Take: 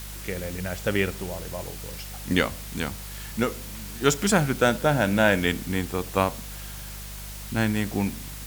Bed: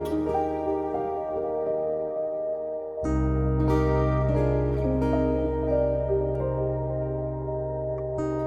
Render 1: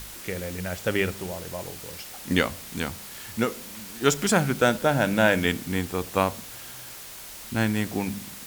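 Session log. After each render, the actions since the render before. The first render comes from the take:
hum removal 50 Hz, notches 4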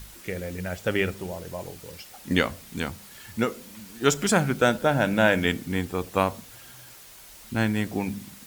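broadband denoise 7 dB, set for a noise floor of −41 dBFS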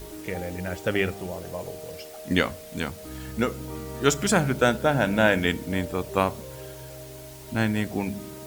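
mix in bed −14 dB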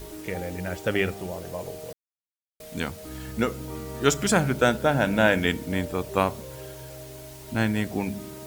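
0:01.93–0:02.60: silence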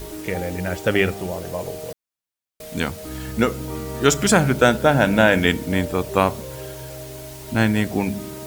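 level +6 dB
brickwall limiter −3 dBFS, peak gain reduction 2.5 dB

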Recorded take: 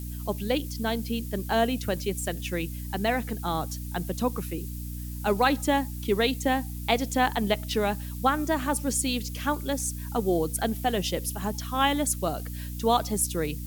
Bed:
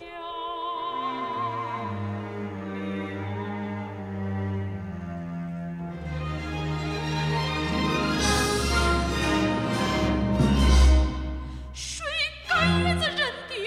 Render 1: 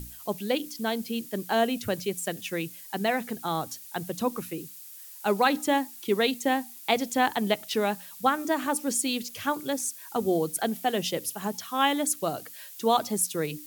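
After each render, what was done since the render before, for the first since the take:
mains-hum notches 60/120/180/240/300 Hz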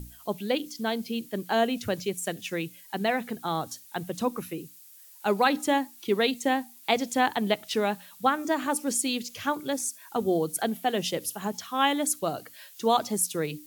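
noise reduction from a noise print 6 dB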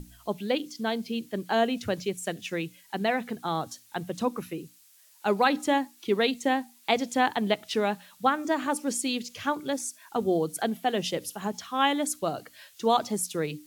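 high-shelf EQ 11,000 Hz −11.5 dB
mains-hum notches 60/120 Hz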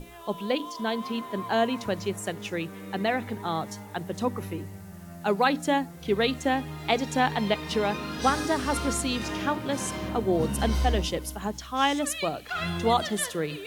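mix in bed −9 dB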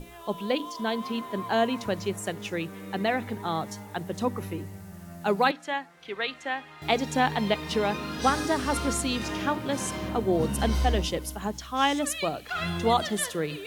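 0:05.51–0:06.82: resonant band-pass 1,800 Hz, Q 0.84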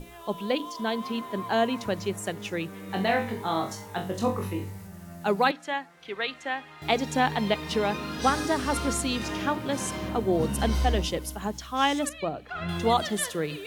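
0:02.87–0:04.87: flutter between parallel walls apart 3.7 metres, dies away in 0.32 s
0:12.09–0:12.69: low-pass filter 1,100 Hz 6 dB per octave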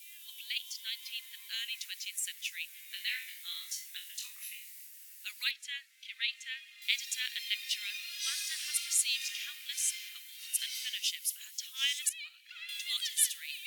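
Butterworth high-pass 2,200 Hz 36 dB per octave
high-shelf EQ 11,000 Hz +10 dB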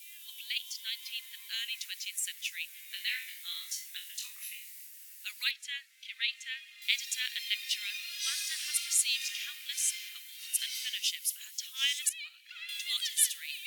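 level +1.5 dB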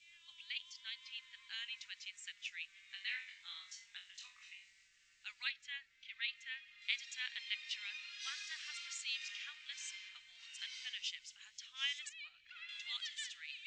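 Butterworth low-pass 7,800 Hz 72 dB per octave
spectral tilt −5.5 dB per octave

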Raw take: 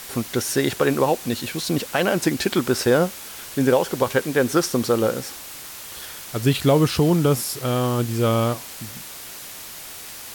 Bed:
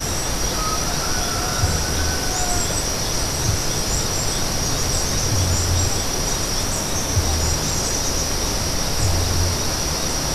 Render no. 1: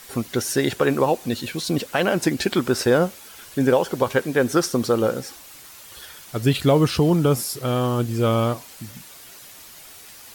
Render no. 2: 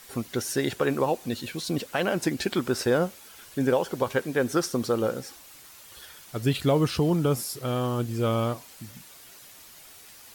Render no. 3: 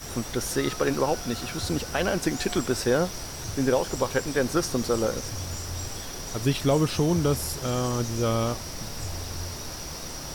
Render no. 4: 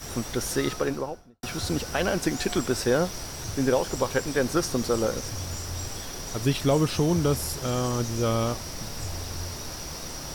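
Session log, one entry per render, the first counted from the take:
broadband denoise 8 dB, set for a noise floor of −38 dBFS
level −5.5 dB
mix in bed −14.5 dB
0:00.62–0:01.43: fade out and dull

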